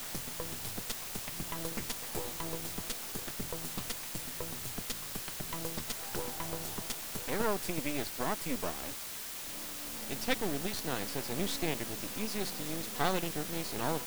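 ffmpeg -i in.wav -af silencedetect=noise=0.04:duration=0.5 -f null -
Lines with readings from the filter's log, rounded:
silence_start: 8.87
silence_end: 10.11 | silence_duration: 1.23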